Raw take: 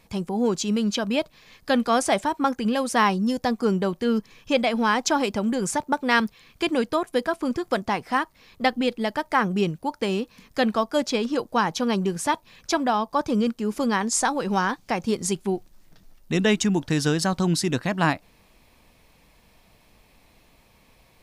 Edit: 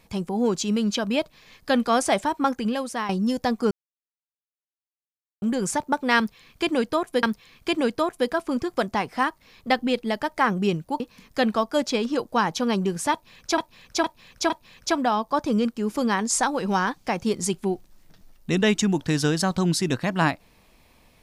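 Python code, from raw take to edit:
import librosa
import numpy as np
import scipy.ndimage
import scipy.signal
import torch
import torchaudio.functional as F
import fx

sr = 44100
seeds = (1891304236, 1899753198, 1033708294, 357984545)

y = fx.edit(x, sr, fx.fade_out_to(start_s=2.56, length_s=0.53, floor_db=-12.5),
    fx.silence(start_s=3.71, length_s=1.71),
    fx.repeat(start_s=6.17, length_s=1.06, count=2),
    fx.cut(start_s=9.94, length_s=0.26),
    fx.repeat(start_s=12.32, length_s=0.46, count=4), tone=tone)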